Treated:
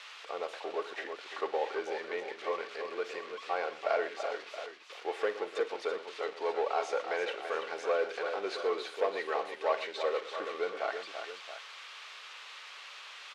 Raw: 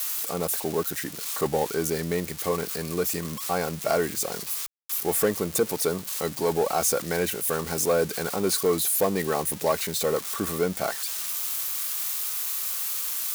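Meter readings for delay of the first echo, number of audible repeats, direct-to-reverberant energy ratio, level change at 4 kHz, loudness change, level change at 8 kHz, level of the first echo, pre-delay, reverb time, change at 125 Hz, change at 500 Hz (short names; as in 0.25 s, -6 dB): 50 ms, 4, none, -9.0 dB, -10.0 dB, -28.0 dB, -14.5 dB, none, none, under -35 dB, -7.0 dB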